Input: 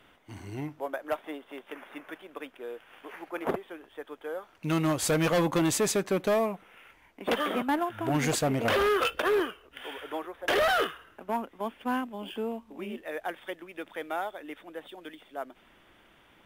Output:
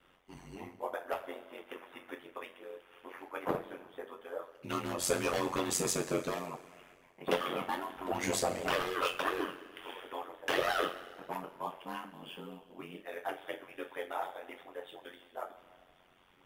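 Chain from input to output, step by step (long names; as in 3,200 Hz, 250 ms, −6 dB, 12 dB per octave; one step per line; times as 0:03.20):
harmonic and percussive parts rebalanced harmonic −11 dB
coupled-rooms reverb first 0.25 s, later 1.8 s, from −18 dB, DRR −2 dB
ring modulation 45 Hz
level −3.5 dB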